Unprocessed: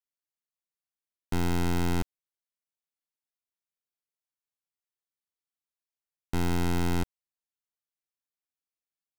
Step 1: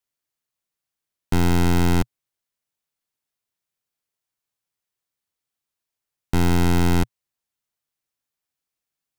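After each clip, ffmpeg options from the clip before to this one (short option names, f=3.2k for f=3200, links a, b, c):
-af "equalizer=f=120:t=o:w=0.66:g=5.5,volume=8dB"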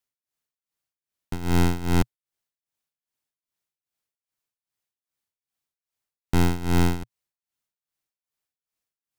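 -af "tremolo=f=2.5:d=0.85"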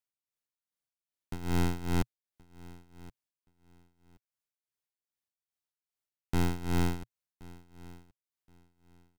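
-af "aecho=1:1:1074|2148:0.0891|0.0196,volume=-8dB"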